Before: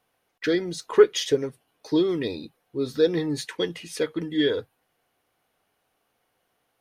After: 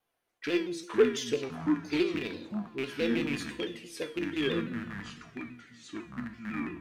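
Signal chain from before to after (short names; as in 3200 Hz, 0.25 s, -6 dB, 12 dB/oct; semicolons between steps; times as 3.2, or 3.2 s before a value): rattling part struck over -31 dBFS, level -16 dBFS; resonator 340 Hz, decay 0.45 s, harmonics all, mix 80%; echoes that change speed 0.278 s, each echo -6 st, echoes 2, each echo -6 dB; reverb, pre-delay 3 ms, DRR 9 dB; shaped vibrato saw down 6 Hz, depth 100 cents; gain +3 dB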